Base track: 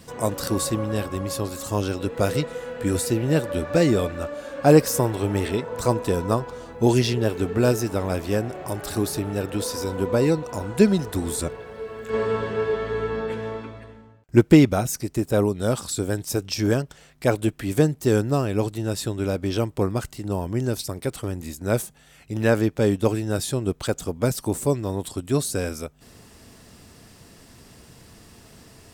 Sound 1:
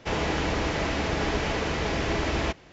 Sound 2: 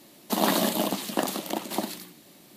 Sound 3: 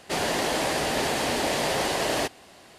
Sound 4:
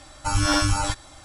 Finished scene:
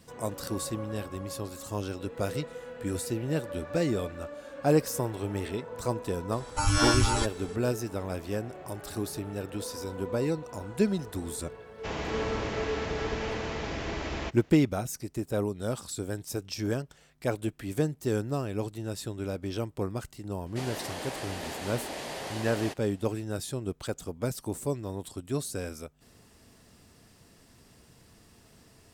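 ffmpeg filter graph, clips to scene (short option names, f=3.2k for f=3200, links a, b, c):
-filter_complex "[0:a]volume=-9dB[a];[4:a]atrim=end=1.24,asetpts=PTS-STARTPTS,volume=-3dB,afade=t=in:d=0.004:c=hsin,afade=t=out:st=1.236:d=0.004:c=hsin,adelay=6320[b];[1:a]atrim=end=2.72,asetpts=PTS-STARTPTS,volume=-7.5dB,afade=t=in:d=0.004:c=hsin,afade=t=out:st=2.716:d=0.004:c=hsin,adelay=519498S[c];[3:a]atrim=end=2.78,asetpts=PTS-STARTPTS,volume=-12dB,afade=t=in:d=0.004:c=hsin,afade=t=out:st=2.776:d=0.004:c=hsin,adelay=20460[d];[a][b][c][d]amix=inputs=4:normalize=0"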